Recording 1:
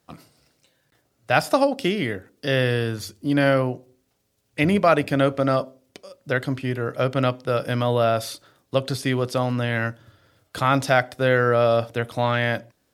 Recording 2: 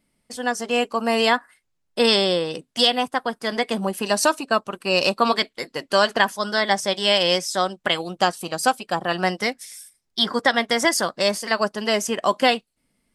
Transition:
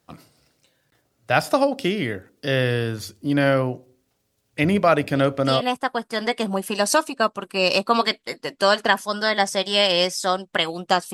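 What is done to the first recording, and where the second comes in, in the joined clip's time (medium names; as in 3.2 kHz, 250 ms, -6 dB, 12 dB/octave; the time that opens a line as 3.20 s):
recording 1
5.15 s: add recording 2 from 2.46 s 0.46 s -9 dB
5.61 s: go over to recording 2 from 2.92 s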